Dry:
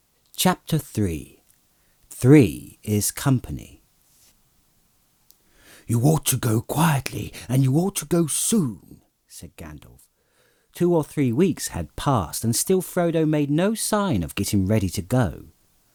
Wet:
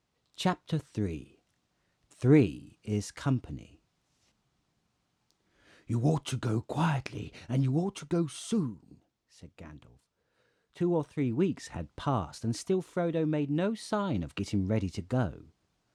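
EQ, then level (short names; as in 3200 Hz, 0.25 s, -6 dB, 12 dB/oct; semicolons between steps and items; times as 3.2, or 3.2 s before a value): HPF 57 Hz; air absorption 110 m; -8.5 dB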